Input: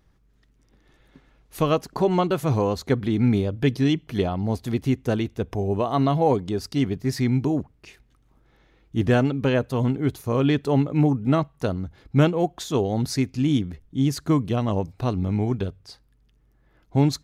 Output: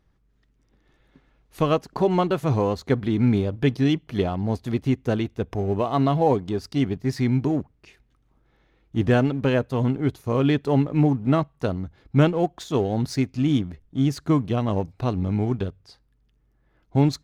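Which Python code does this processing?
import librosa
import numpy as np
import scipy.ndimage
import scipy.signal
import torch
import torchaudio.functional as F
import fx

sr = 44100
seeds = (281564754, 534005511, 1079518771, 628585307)

p1 = fx.high_shelf(x, sr, hz=7100.0, db=-8.0)
p2 = np.sign(p1) * np.maximum(np.abs(p1) - 10.0 ** (-36.5 / 20.0), 0.0)
p3 = p1 + (p2 * librosa.db_to_amplitude(-4.5))
y = p3 * librosa.db_to_amplitude(-3.5)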